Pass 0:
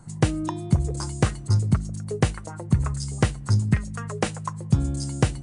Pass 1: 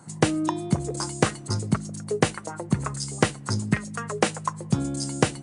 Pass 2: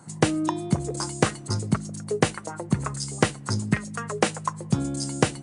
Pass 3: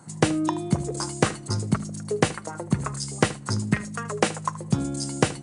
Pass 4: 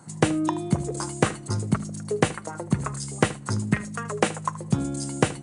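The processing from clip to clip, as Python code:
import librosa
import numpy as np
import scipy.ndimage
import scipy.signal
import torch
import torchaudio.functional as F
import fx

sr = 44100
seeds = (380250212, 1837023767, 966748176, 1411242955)

y1 = scipy.signal.sosfilt(scipy.signal.butter(2, 210.0, 'highpass', fs=sr, output='sos'), x)
y1 = y1 * 10.0 ** (4.0 / 20.0)
y2 = y1
y3 = y2 + 10.0 ** (-17.0 / 20.0) * np.pad(y2, (int(77 * sr / 1000.0), 0))[:len(y2)]
y4 = fx.dynamic_eq(y3, sr, hz=5000.0, q=2.0, threshold_db=-47.0, ratio=4.0, max_db=-6)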